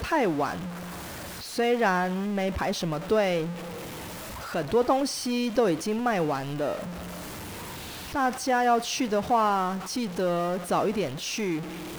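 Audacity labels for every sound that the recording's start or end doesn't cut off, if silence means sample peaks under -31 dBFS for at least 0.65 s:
1.570000	3.520000	sound
4.520000	6.880000	sound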